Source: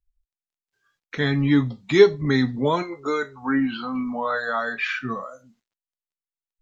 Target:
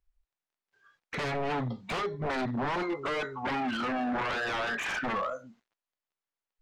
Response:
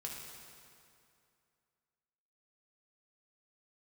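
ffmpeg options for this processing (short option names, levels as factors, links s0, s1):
-filter_complex "[0:a]acompressor=threshold=0.0708:ratio=16,aeval=exprs='0.0376*(abs(mod(val(0)/0.0376+3,4)-2)-1)':c=same,asplit=2[s0][s1];[s1]highpass=f=720:p=1,volume=3.16,asoftclip=type=tanh:threshold=0.0398[s2];[s0][s2]amix=inputs=2:normalize=0,lowpass=f=1200:p=1,volume=0.501,volume=1.78"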